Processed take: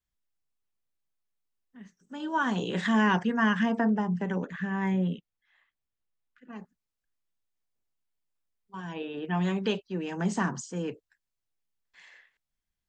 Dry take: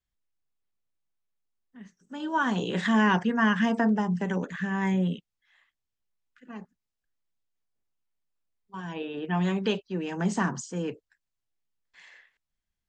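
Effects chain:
0:03.63–0:06.53: high-shelf EQ 5,000 Hz −12 dB
level −1.5 dB

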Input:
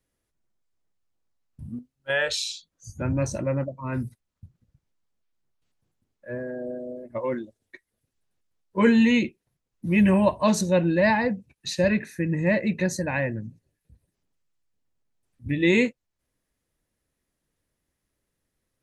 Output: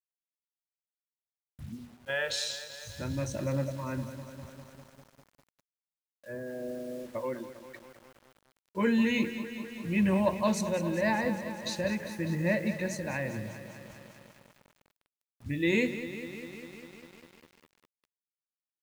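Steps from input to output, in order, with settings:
mains-hum notches 60/120/180/240/300/360/420/480/540 Hz
in parallel at −1 dB: downward compressor 12 to 1, threshold −31 dBFS, peak gain reduction 17 dB
on the sum: bit reduction 8 bits
shaped tremolo triangle 0.9 Hz, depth 40%
feedback echo at a low word length 200 ms, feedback 80%, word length 7 bits, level −11.5 dB
level −7 dB

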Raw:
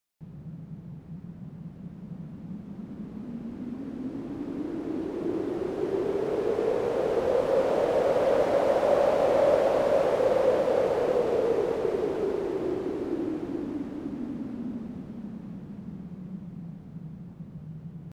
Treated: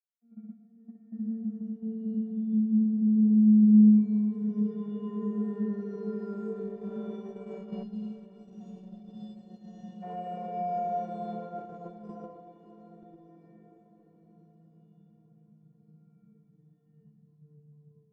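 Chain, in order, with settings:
vocoder with a gliding carrier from A#3, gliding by −8 semitones
flanger 0.24 Hz, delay 3 ms, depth 9.2 ms, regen +67%
downward compressor 8 to 1, threshold −31 dBFS, peak gain reduction 8.5 dB
stiff-string resonator 210 Hz, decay 0.5 s, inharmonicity 0.03
noise gate −58 dBFS, range −14 dB
automatic gain control gain up to 9 dB
on a send at −12.5 dB: convolution reverb RT60 0.70 s, pre-delay 43 ms
on the sum: dynamic equaliser 330 Hz, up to −3 dB, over −52 dBFS, Q 0.97
gain on a spectral selection 0:07.83–0:10.03, 350–2,600 Hz −17 dB
low-shelf EQ 500 Hz +9 dB
feedback delay with all-pass diffusion 626 ms, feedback 46%, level −14 dB
level +4.5 dB

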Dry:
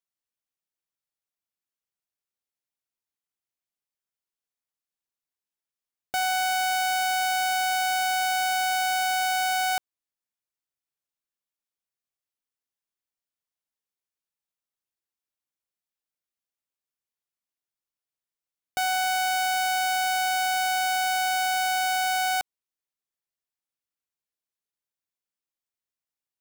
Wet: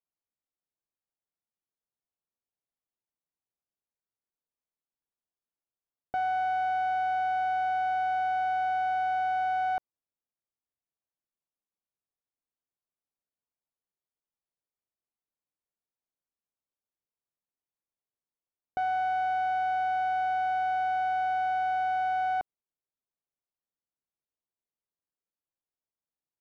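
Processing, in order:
low-pass filter 1,000 Hz 12 dB per octave

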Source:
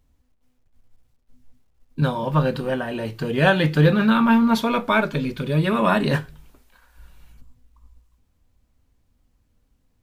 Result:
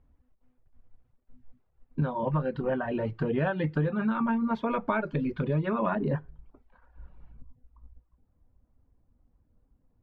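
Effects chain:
low-pass filter 1,600 Hz 12 dB per octave, from 0:05.95 1,000 Hz
reverb reduction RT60 0.55 s
downward compressor 10 to 1, threshold −24 dBFS, peak gain reduction 13 dB

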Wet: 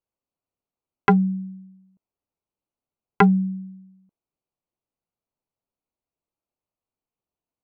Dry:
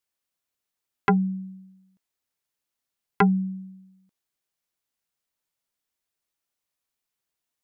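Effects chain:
adaptive Wiener filter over 25 samples
level +4 dB

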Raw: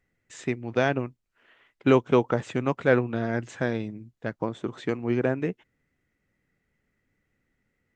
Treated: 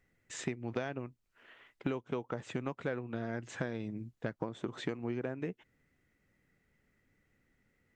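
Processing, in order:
downward compressor 20 to 1, threshold −33 dBFS, peak gain reduction 20.5 dB
level +1 dB

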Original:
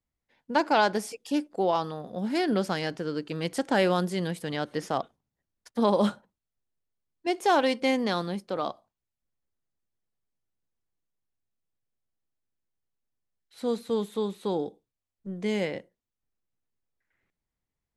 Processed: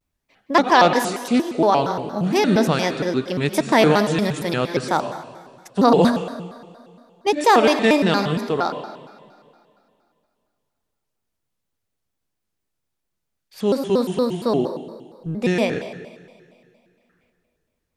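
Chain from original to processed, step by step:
on a send at −8 dB: convolution reverb, pre-delay 83 ms
on the sum: pitch modulation by a square or saw wave square 4.3 Hz, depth 250 cents
level +8.5 dB

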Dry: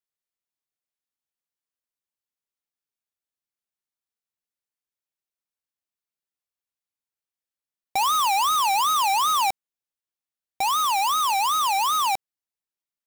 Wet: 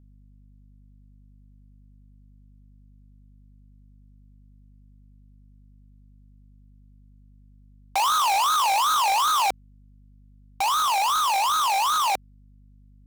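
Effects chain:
mains hum 50 Hz, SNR 25 dB
highs frequency-modulated by the lows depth 0.51 ms

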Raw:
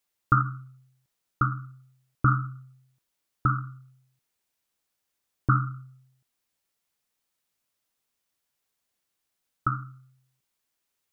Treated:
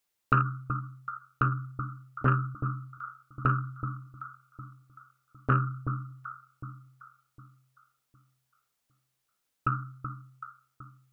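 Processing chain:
delay that swaps between a low-pass and a high-pass 379 ms, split 1,200 Hz, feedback 54%, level −8 dB
saturating transformer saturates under 490 Hz

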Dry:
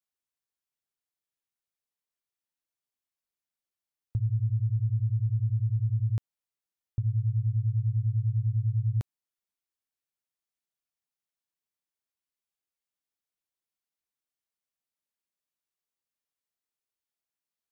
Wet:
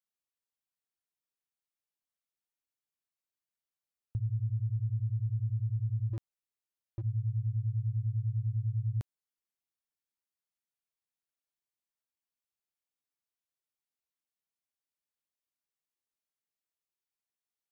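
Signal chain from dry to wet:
0:06.13–0:07.04: gain into a clipping stage and back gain 27.5 dB
level −5 dB

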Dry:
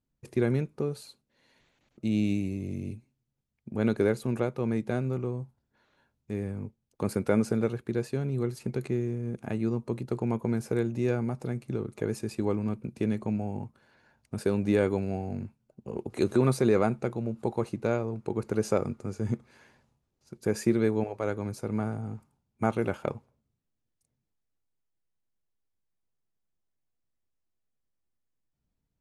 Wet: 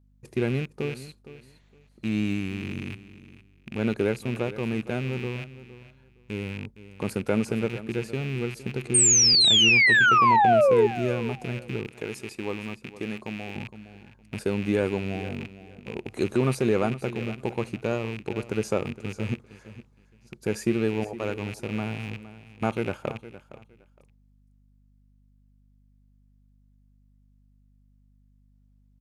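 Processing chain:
loose part that buzzes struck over −38 dBFS, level −27 dBFS
0:08.94–0:10.87: sound drawn into the spectrogram fall 400–8,900 Hz −18 dBFS
on a send: repeating echo 463 ms, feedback 20%, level −15.5 dB
on the sum: mains hum 50 Hz, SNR 33 dB
0:11.87–0:13.56: low-shelf EQ 270 Hz −10 dB

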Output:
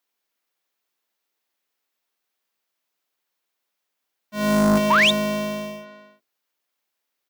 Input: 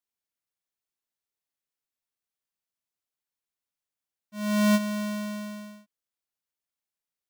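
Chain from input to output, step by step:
sub-octave generator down 2 octaves, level +1 dB
high-pass filter 290 Hz 12 dB per octave
parametric band 9,000 Hz −6.5 dB 1.2 octaves
far-end echo of a speakerphone 340 ms, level −11 dB
sound drawn into the spectrogram rise, 0:04.90–0:05.11, 870–3,900 Hz −27 dBFS
in parallel at −7 dB: sine wavefolder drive 11 dB, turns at −12 dBFS
on the sum: level +2.5 dB

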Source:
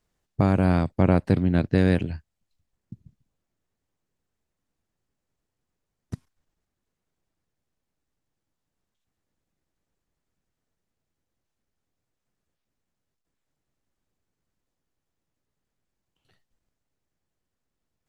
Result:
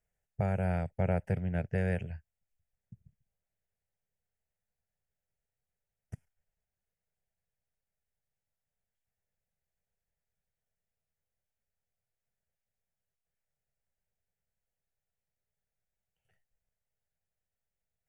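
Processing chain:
phaser with its sweep stopped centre 1,100 Hz, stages 6
level −7 dB

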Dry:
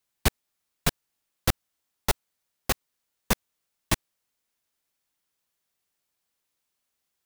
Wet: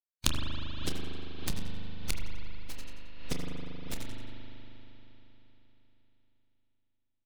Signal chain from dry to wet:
spectral dynamics exaggerated over time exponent 3
low-pass filter 6,800 Hz 12 dB per octave
low-shelf EQ 78 Hz +11 dB
harmonic and percussive parts rebalanced percussive +5 dB
flat-topped bell 890 Hz −13 dB 2.8 octaves
downward compressor 6 to 1, threshold −18 dBFS, peak gain reduction 9.5 dB
on a send: repeating echo 89 ms, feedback 36%, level −6 dB
on the sum: harmonic generator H 3 −7 dB, 4 −17 dB, 5 −35 dB, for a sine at −8 dBFS
half-wave rectification
double-tracking delay 28 ms −10.5 dB
spring reverb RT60 3.8 s, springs 39 ms, chirp 35 ms, DRR −2 dB
background raised ahead of every attack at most 55 dB per second
level +8 dB

